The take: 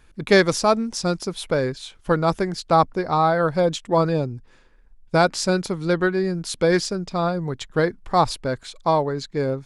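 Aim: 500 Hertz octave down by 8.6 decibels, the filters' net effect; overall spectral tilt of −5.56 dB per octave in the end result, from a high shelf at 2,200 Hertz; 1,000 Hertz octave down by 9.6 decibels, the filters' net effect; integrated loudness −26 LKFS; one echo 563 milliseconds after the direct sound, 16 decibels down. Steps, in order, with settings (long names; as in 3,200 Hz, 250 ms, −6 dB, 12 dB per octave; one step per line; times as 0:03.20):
parametric band 500 Hz −8.5 dB
parametric band 1,000 Hz −8.5 dB
high-shelf EQ 2,200 Hz −6.5 dB
single-tap delay 563 ms −16 dB
level +1.5 dB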